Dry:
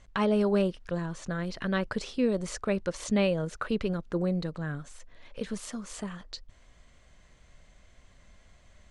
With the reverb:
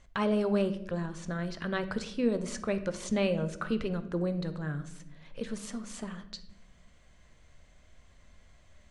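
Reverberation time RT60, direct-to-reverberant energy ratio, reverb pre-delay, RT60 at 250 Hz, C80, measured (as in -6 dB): 0.80 s, 9.5 dB, 13 ms, 1.5 s, 16.0 dB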